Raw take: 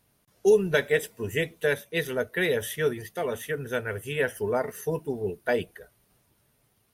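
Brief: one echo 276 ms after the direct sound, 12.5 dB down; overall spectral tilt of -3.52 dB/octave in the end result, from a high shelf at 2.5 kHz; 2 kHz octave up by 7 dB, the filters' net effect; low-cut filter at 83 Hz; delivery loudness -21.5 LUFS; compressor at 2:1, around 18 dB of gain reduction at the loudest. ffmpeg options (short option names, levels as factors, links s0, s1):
-af "highpass=83,equalizer=f=2000:t=o:g=5,highshelf=f=2500:g=8,acompressor=threshold=0.00355:ratio=2,aecho=1:1:276:0.237,volume=8.41"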